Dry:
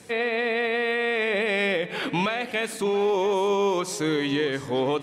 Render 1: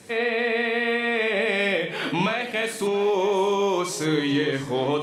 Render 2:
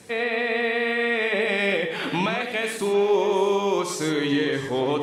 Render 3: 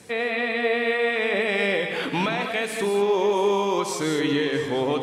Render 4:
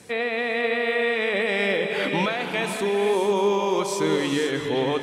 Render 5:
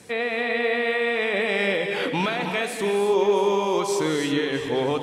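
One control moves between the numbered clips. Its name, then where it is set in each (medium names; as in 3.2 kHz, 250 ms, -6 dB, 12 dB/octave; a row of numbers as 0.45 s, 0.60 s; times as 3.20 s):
gated-style reverb, gate: 80 ms, 140 ms, 230 ms, 540 ms, 350 ms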